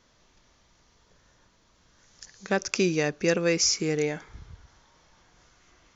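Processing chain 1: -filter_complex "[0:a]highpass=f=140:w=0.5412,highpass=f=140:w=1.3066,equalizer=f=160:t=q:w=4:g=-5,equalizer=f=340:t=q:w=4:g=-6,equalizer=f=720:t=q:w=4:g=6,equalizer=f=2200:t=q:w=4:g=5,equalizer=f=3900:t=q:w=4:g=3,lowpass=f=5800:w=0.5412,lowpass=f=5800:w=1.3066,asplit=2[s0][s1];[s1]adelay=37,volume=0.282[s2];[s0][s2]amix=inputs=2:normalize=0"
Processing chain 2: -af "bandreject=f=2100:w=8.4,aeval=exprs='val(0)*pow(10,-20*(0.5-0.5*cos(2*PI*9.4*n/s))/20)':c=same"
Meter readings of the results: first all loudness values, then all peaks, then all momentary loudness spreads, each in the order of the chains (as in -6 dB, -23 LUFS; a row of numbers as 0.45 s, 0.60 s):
-26.0 LUFS, -30.5 LUFS; -9.0 dBFS, -12.5 dBFS; 8 LU, 9 LU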